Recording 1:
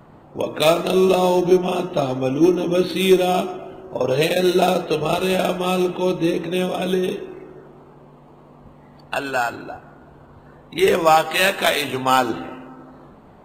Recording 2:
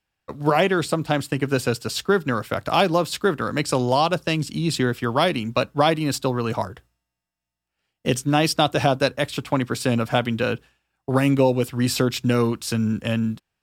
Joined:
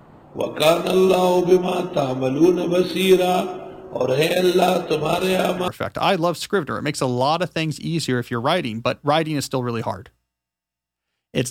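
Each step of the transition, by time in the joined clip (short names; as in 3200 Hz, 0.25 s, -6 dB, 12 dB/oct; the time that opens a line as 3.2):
recording 1
5.21 add recording 2 from 1.92 s 0.47 s -14.5 dB
5.68 switch to recording 2 from 2.39 s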